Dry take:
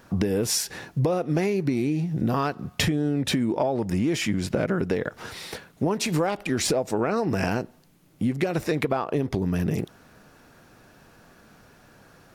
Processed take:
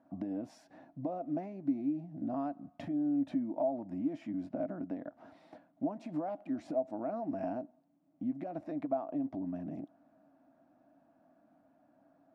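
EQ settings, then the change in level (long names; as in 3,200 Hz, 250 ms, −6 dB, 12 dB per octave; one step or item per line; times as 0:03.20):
pair of resonant band-passes 430 Hz, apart 1.2 octaves
−3.5 dB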